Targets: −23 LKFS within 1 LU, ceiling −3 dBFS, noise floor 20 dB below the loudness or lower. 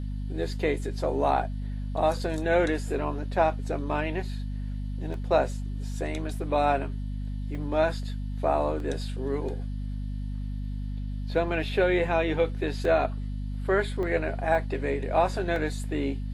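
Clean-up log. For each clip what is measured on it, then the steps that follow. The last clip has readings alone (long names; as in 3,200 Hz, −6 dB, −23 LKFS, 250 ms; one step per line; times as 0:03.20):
number of dropouts 7; longest dropout 1.9 ms; mains hum 50 Hz; hum harmonics up to 250 Hz; level of the hum −30 dBFS; integrated loudness −28.5 LKFS; sample peak −10.0 dBFS; target loudness −23.0 LKFS
→ repair the gap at 0:05.14/0:07.55/0:08.80/0:12.85/0:14.03/0:14.55/0:15.56, 1.9 ms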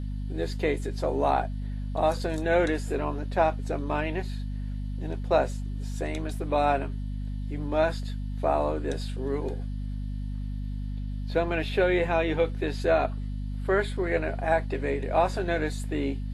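number of dropouts 0; mains hum 50 Hz; hum harmonics up to 250 Hz; level of the hum −30 dBFS
→ hum removal 50 Hz, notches 5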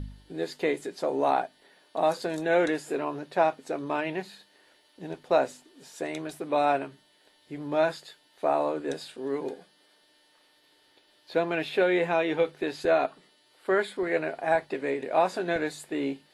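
mains hum none found; integrated loudness −28.5 LKFS; sample peak −11.0 dBFS; target loudness −23.0 LKFS
→ level +5.5 dB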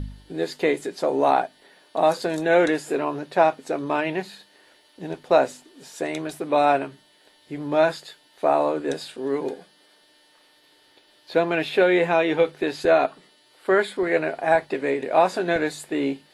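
integrated loudness −23.0 LKFS; sample peak −5.5 dBFS; background noise floor −58 dBFS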